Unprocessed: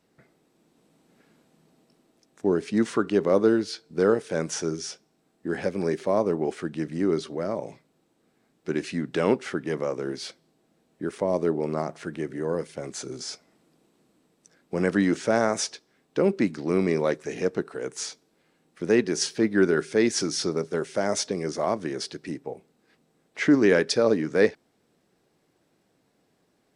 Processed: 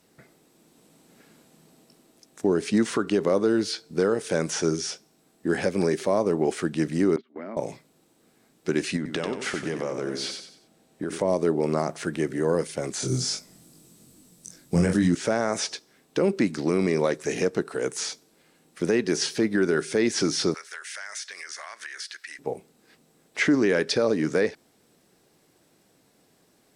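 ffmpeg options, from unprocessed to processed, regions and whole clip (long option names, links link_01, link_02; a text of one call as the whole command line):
ffmpeg -i in.wav -filter_complex "[0:a]asettb=1/sr,asplit=3[link_01][link_02][link_03];[link_01]atrim=end=7.164[link_04];[link_02]atrim=start=7.16:end=7.57,asetpts=PTS-STARTPTS,afade=type=in:duration=0.004:curve=qsin,afade=type=out:start_time=0.406:duration=0.004:curve=qsin,agate=range=-28dB:threshold=-32dB:ratio=16:release=100:detection=peak,highpass=frequency=210:width=0.5412,highpass=frequency=210:width=1.3066,equalizer=frequency=240:width_type=q:width=4:gain=9,equalizer=frequency=500:width_type=q:width=4:gain=-7,equalizer=frequency=2100:width_type=q:width=4:gain=6,lowpass=frequency=3000:width=0.5412,lowpass=frequency=3000:width=1.3066,acompressor=threshold=-37dB:ratio=10:attack=3.2:release=140:knee=1:detection=peak[link_05];[link_03]atrim=start=7.566[link_06];[link_04][link_05]acrossfade=duration=0.004:curve1=hsin:curve2=qsin[link_07];[link_07][link_06]acrossfade=duration=0.004:curve1=qsin:curve2=hsin,asettb=1/sr,asplit=3[link_08][link_09][link_10];[link_08]atrim=end=8.964[link_11];[link_09]atrim=start=8.96:end=11.22,asetpts=PTS-STARTPTS,afade=type=in:duration=0.004:curve=qsin,afade=type=out:start_time=2.256:duration=0.004:curve=qsin,highshelf=frequency=9300:gain=-5,acompressor=threshold=-29dB:ratio=10:attack=3.2:release=140:knee=1:detection=peak,aecho=1:1:93|186|279|372:0.422|0.148|0.0517|0.0181,atrim=end_sample=99666[link_12];[link_10]atrim=start=11.216[link_13];[link_11][link_12]acrossfade=duration=0.004:curve1=hsin:curve2=qsin[link_14];[link_14][link_13]acrossfade=duration=0.004:curve1=qsin:curve2=hsin,asettb=1/sr,asplit=3[link_15][link_16][link_17];[link_15]atrim=end=13.004[link_18];[link_16]atrim=start=13:end=15.15,asetpts=PTS-STARTPTS,afade=type=in:duration=0.004:curve=qsin,afade=type=out:start_time=2.146:duration=0.004:curve=qsin,bass=frequency=250:gain=13,treble=frequency=4000:gain=11,flanger=delay=19.5:depth=5.2:speed=2.5,asplit=2[link_19][link_20];[link_20]adelay=23,volume=-5dB[link_21];[link_19][link_21]amix=inputs=2:normalize=0,atrim=end_sample=94815[link_22];[link_17]atrim=start=15.146[link_23];[link_18][link_22]acrossfade=duration=0.004:curve1=hsin:curve2=qsin[link_24];[link_24][link_23]acrossfade=duration=0.004:curve1=qsin:curve2=hsin,asettb=1/sr,asplit=3[link_25][link_26][link_27];[link_25]atrim=end=20.544[link_28];[link_26]atrim=start=20.54:end=22.39,asetpts=PTS-STARTPTS,afade=type=in:duration=0.004:curve=qsin,afade=type=out:start_time=1.846:duration=0.004:curve=qsin,highpass=frequency=1700:width_type=q:width=3.2,acompressor=threshold=-42dB:ratio=4:attack=3.2:release=140:knee=1:detection=peak[link_29];[link_27]atrim=start=22.386[link_30];[link_28][link_29]acrossfade=duration=0.004:curve1=hsin:curve2=qsin[link_31];[link_31][link_30]acrossfade=duration=0.004:curve1=qsin:curve2=hsin,acrossover=split=3900[link_32][link_33];[link_33]acompressor=threshold=-42dB:ratio=4:attack=1:release=60[link_34];[link_32][link_34]amix=inputs=2:normalize=0,aemphasis=mode=production:type=cd,alimiter=limit=-17.5dB:level=0:latency=1:release=146,volume=5dB" out.wav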